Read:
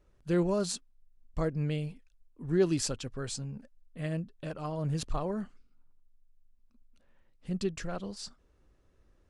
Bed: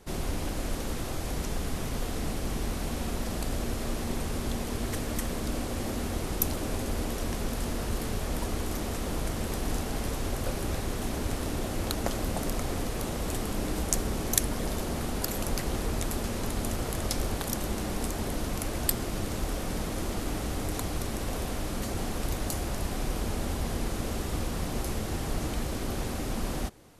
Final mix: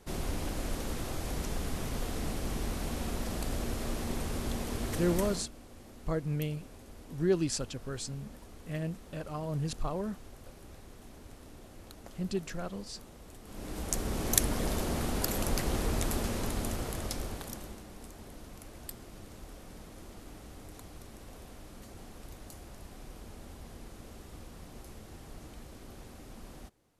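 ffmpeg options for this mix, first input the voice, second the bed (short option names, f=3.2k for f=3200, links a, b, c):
-filter_complex "[0:a]adelay=4700,volume=-1.5dB[a];[1:a]volume=16dB,afade=t=out:st=5.26:d=0.23:silence=0.149624,afade=t=in:st=13.43:d=0.95:silence=0.112202,afade=t=out:st=16.14:d=1.7:silence=0.158489[b];[a][b]amix=inputs=2:normalize=0"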